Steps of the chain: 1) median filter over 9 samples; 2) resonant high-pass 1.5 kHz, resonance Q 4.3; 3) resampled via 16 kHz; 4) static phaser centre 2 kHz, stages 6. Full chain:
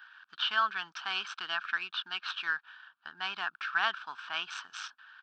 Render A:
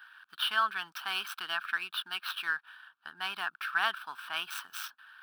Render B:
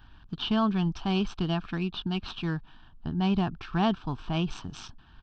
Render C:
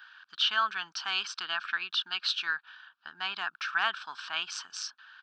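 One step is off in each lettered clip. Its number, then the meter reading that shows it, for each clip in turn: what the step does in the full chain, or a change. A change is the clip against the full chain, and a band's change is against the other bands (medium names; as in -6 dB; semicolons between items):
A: 3, momentary loudness spread change -2 LU; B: 2, 250 Hz band +33.5 dB; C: 1, 4 kHz band +4.5 dB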